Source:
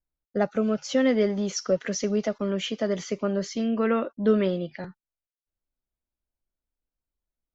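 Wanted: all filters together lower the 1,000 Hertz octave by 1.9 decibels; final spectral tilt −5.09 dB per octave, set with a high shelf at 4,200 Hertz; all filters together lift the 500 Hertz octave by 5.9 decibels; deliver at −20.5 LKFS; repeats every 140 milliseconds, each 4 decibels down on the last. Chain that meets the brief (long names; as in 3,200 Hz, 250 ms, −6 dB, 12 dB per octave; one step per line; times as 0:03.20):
parametric band 500 Hz +8.5 dB
parametric band 1,000 Hz −7 dB
high-shelf EQ 4,200 Hz +4 dB
repeating echo 140 ms, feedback 63%, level −4 dB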